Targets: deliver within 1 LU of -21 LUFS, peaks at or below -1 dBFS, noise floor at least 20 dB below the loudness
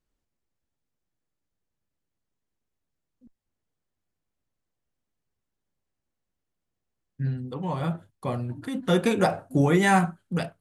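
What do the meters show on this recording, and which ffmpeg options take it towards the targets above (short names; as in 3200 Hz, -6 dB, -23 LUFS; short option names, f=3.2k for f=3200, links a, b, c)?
loudness -25.5 LUFS; peak -8.5 dBFS; loudness target -21.0 LUFS
-> -af "volume=4.5dB"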